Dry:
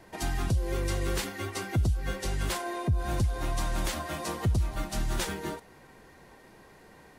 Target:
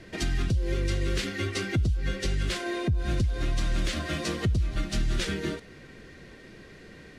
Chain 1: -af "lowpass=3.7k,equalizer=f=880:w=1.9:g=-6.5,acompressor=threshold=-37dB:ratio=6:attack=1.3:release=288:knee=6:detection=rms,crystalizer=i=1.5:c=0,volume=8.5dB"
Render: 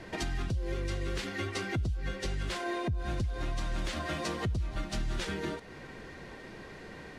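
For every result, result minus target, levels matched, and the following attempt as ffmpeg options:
compressor: peak gain reduction +7 dB; 1000 Hz band +6.5 dB
-af "lowpass=3.7k,equalizer=f=880:w=1.9:g=-6.5,acompressor=threshold=-29dB:ratio=6:attack=1.3:release=288:knee=6:detection=rms,crystalizer=i=1.5:c=0,volume=8.5dB"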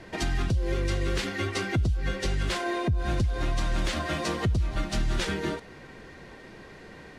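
1000 Hz band +5.5 dB
-af "lowpass=3.7k,equalizer=f=880:w=1.9:g=-18.5,acompressor=threshold=-29dB:ratio=6:attack=1.3:release=288:knee=6:detection=rms,crystalizer=i=1.5:c=0,volume=8.5dB"

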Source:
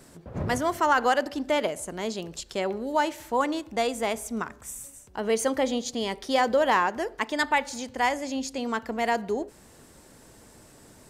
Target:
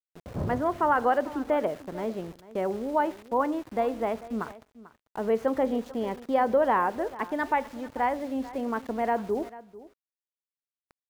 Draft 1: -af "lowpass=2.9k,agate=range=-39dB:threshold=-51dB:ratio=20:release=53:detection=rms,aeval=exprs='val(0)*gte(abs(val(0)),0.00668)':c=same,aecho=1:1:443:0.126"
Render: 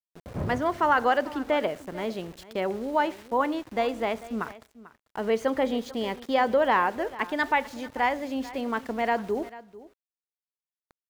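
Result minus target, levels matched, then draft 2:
4000 Hz band +9.5 dB
-af "lowpass=1.3k,agate=range=-39dB:threshold=-51dB:ratio=20:release=53:detection=rms,aeval=exprs='val(0)*gte(abs(val(0)),0.00668)':c=same,aecho=1:1:443:0.126"

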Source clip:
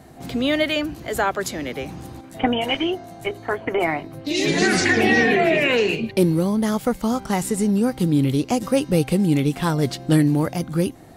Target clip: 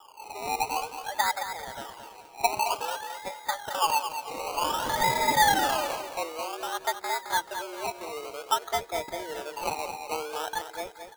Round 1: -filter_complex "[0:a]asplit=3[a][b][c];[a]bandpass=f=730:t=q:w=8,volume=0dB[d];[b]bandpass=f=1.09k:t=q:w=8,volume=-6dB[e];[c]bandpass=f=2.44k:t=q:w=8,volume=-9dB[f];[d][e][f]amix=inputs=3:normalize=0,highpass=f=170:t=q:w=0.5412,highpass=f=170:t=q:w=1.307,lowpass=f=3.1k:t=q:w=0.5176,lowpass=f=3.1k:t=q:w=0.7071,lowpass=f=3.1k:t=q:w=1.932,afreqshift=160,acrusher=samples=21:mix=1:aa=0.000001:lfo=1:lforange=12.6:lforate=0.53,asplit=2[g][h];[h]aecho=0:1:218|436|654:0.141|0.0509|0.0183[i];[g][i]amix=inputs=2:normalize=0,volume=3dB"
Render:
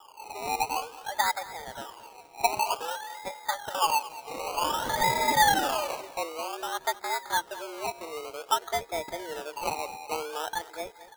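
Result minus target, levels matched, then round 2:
echo-to-direct -8 dB
-filter_complex "[0:a]asplit=3[a][b][c];[a]bandpass=f=730:t=q:w=8,volume=0dB[d];[b]bandpass=f=1.09k:t=q:w=8,volume=-6dB[e];[c]bandpass=f=2.44k:t=q:w=8,volume=-9dB[f];[d][e][f]amix=inputs=3:normalize=0,highpass=f=170:t=q:w=0.5412,highpass=f=170:t=q:w=1.307,lowpass=f=3.1k:t=q:w=0.5176,lowpass=f=3.1k:t=q:w=0.7071,lowpass=f=3.1k:t=q:w=1.932,afreqshift=160,acrusher=samples=21:mix=1:aa=0.000001:lfo=1:lforange=12.6:lforate=0.53,asplit=2[g][h];[h]aecho=0:1:218|436|654|872:0.355|0.128|0.046|0.0166[i];[g][i]amix=inputs=2:normalize=0,volume=3dB"

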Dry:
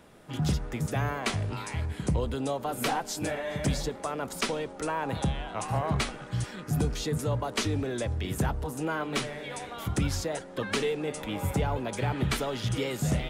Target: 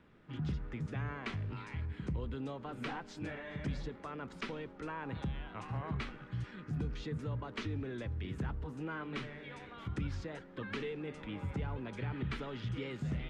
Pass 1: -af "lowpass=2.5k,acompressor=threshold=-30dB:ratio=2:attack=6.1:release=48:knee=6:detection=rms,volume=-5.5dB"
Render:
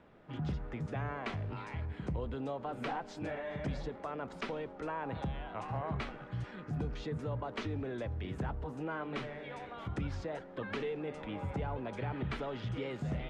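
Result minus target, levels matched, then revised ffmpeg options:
500 Hz band +3.5 dB
-af "lowpass=2.5k,equalizer=f=670:t=o:w=1.1:g=-10.5,acompressor=threshold=-30dB:ratio=2:attack=6.1:release=48:knee=6:detection=rms,volume=-5.5dB"

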